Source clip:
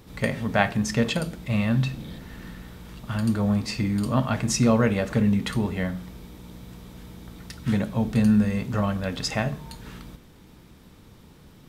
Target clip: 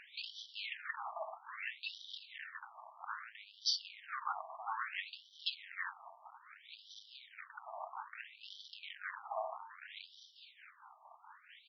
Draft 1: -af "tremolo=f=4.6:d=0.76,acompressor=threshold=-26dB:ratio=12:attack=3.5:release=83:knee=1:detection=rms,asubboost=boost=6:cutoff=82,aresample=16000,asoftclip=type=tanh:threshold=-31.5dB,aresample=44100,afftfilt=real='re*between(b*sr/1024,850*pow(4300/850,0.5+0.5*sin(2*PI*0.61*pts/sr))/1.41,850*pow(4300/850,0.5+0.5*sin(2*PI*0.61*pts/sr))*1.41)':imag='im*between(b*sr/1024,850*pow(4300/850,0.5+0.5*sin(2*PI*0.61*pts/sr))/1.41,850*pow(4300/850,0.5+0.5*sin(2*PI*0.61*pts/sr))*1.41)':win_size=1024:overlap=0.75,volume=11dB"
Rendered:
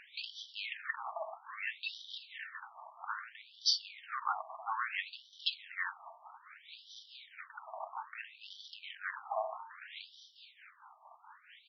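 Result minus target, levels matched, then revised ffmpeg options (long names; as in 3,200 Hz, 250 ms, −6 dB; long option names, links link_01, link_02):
soft clipping: distortion −4 dB
-af "tremolo=f=4.6:d=0.76,acompressor=threshold=-26dB:ratio=12:attack=3.5:release=83:knee=1:detection=rms,asubboost=boost=6:cutoff=82,aresample=16000,asoftclip=type=tanh:threshold=-38dB,aresample=44100,afftfilt=real='re*between(b*sr/1024,850*pow(4300/850,0.5+0.5*sin(2*PI*0.61*pts/sr))/1.41,850*pow(4300/850,0.5+0.5*sin(2*PI*0.61*pts/sr))*1.41)':imag='im*between(b*sr/1024,850*pow(4300/850,0.5+0.5*sin(2*PI*0.61*pts/sr))/1.41,850*pow(4300/850,0.5+0.5*sin(2*PI*0.61*pts/sr))*1.41)':win_size=1024:overlap=0.75,volume=11dB"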